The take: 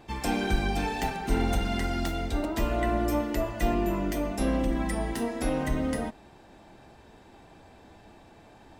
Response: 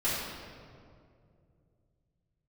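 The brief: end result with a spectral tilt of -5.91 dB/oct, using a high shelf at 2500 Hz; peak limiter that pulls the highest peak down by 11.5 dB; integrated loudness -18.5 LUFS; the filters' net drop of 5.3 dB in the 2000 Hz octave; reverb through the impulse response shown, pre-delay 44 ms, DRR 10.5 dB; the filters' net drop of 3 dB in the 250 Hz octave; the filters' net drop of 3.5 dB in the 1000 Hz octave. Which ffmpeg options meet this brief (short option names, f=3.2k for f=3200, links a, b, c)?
-filter_complex "[0:a]equalizer=f=250:t=o:g=-3.5,equalizer=f=1k:t=o:g=-3.5,equalizer=f=2k:t=o:g=-3,highshelf=f=2.5k:g=-5.5,alimiter=level_in=1.5dB:limit=-24dB:level=0:latency=1,volume=-1.5dB,asplit=2[a][b];[1:a]atrim=start_sample=2205,adelay=44[c];[b][c]afir=irnorm=-1:irlink=0,volume=-20dB[d];[a][d]amix=inputs=2:normalize=0,volume=16.5dB"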